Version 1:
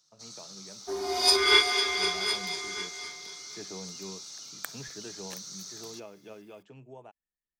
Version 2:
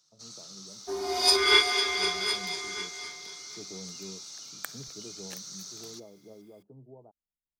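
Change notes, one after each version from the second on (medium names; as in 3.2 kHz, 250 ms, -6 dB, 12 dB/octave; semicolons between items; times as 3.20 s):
speech: add Gaussian low-pass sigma 12 samples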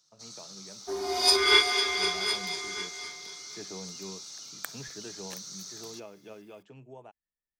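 speech: remove Gaussian low-pass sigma 12 samples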